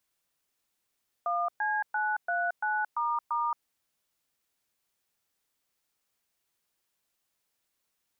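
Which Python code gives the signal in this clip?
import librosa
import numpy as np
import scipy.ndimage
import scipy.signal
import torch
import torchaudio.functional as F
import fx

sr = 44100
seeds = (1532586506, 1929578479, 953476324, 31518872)

y = fx.dtmf(sr, digits='1C939**', tone_ms=224, gap_ms=117, level_db=-29.0)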